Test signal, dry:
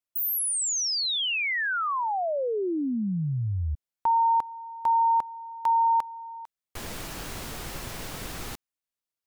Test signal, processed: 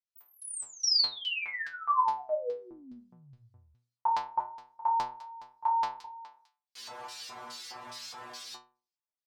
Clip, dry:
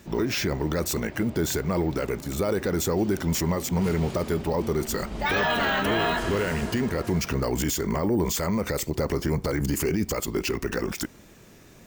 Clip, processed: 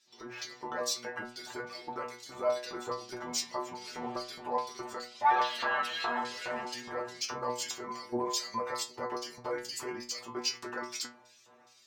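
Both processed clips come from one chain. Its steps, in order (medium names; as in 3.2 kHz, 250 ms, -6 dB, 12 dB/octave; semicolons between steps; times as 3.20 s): LFO band-pass square 2.4 Hz 940–4600 Hz; level rider gain up to 7 dB; inharmonic resonator 120 Hz, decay 0.41 s, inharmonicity 0.002; trim +8 dB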